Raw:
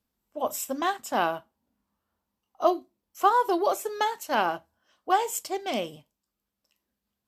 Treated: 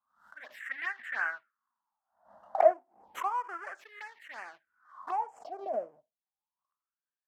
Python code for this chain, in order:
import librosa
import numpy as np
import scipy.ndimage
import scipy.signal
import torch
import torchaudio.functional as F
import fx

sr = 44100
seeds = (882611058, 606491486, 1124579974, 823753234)

y = fx.halfwave_hold(x, sr)
y = fx.wah_lfo(y, sr, hz=0.3, low_hz=630.0, high_hz=1900.0, q=9.1)
y = fx.env_phaser(y, sr, low_hz=410.0, high_hz=3800.0, full_db=-34.5)
y = fx.peak_eq(y, sr, hz=1600.0, db=13.0, octaves=1.1, at=(0.6, 2.74))
y = fx.pre_swell(y, sr, db_per_s=120.0)
y = y * 10.0 ** (-1.5 / 20.0)